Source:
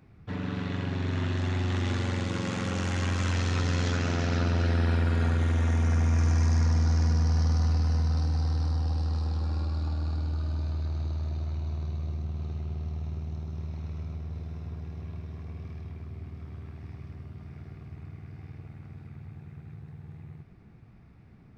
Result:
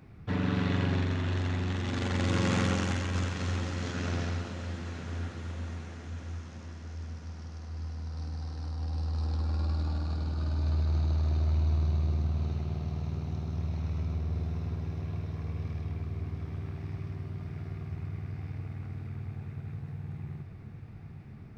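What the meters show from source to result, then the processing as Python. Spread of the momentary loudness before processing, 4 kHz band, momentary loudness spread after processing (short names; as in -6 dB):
20 LU, -2.0 dB, 13 LU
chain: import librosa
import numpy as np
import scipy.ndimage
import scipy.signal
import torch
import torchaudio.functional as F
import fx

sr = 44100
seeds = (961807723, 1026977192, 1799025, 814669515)

p1 = fx.over_compress(x, sr, threshold_db=-30.0, ratio=-0.5)
y = p1 + fx.echo_diffused(p1, sr, ms=917, feedback_pct=60, wet_db=-11, dry=0)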